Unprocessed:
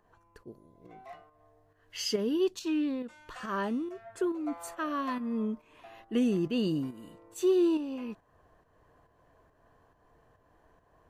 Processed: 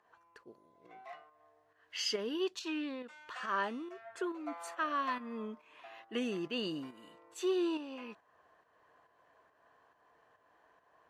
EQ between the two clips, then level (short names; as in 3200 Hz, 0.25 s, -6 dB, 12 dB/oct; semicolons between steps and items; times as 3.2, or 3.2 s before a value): band-pass 2000 Hz, Q 0.52; +2.0 dB